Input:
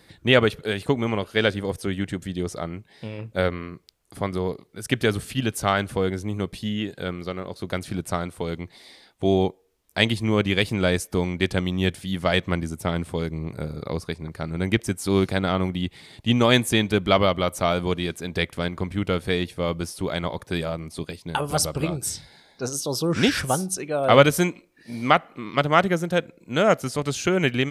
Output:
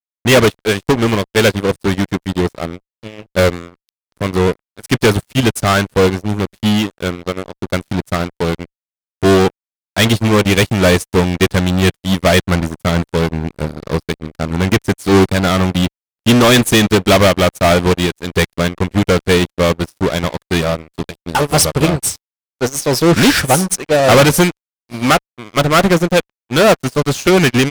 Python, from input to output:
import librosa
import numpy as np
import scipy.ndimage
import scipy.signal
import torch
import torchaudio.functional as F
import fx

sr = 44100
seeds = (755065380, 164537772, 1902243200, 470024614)

y = fx.fuzz(x, sr, gain_db=29.0, gate_db=-34.0)
y = fx.upward_expand(y, sr, threshold_db=-32.0, expansion=2.5)
y = F.gain(torch.from_numpy(y), 8.0).numpy()